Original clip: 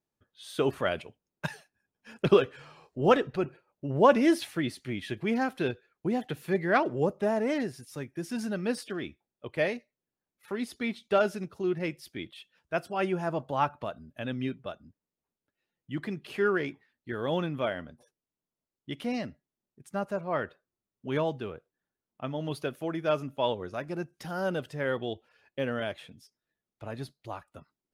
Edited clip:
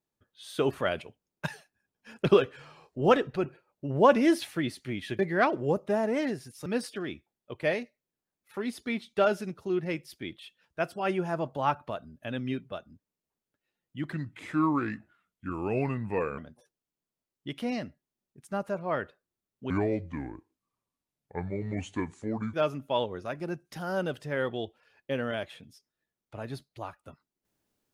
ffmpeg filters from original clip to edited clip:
-filter_complex "[0:a]asplit=7[s0][s1][s2][s3][s4][s5][s6];[s0]atrim=end=5.192[s7];[s1]atrim=start=6.518:end=7.992[s8];[s2]atrim=start=8.598:end=16.064[s9];[s3]atrim=start=16.06:end=17.8,asetpts=PTS-STARTPTS,asetrate=33957,aresample=44100[s10];[s4]atrim=start=17.796:end=21.124[s11];[s5]atrim=start=21.12:end=23.02,asetpts=PTS-STARTPTS,asetrate=29547,aresample=44100[s12];[s6]atrim=start=23.016[s13];[s7][s8]acrossfade=d=0.004:c1=hsin:c2=hsin[s14];[s14][s9]acrossfade=d=0.004:c1=hsin:c2=hsin[s15];[s15][s10]acrossfade=d=0.004:c1=hsin:c2=hsin[s16];[s16][s11]acrossfade=d=0.004:c1=hsin:c2=hsin[s17];[s17][s12]acrossfade=d=0.004:c1=hsin:c2=hsin[s18];[s18][s13]acrossfade=d=0.004:c1=hsin:c2=hsin"

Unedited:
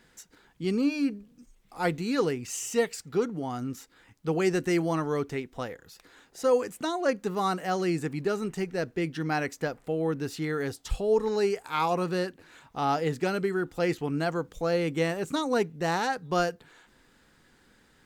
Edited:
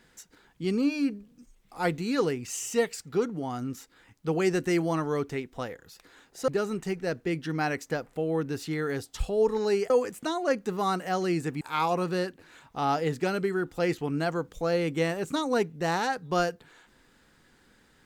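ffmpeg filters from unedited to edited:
-filter_complex "[0:a]asplit=4[s0][s1][s2][s3];[s0]atrim=end=6.482[s4];[s1]atrim=start=8.188:end=11.612[s5];[s2]atrim=start=6.478:end=8.192[s6];[s3]atrim=start=11.608[s7];[s4][s5]acrossfade=d=0.004:c1=hsin:c2=hsin[s8];[s8][s6]acrossfade=d=0.004:c1=hsin:c2=hsin[s9];[s9][s7]acrossfade=d=0.004:c1=hsin:c2=hsin"

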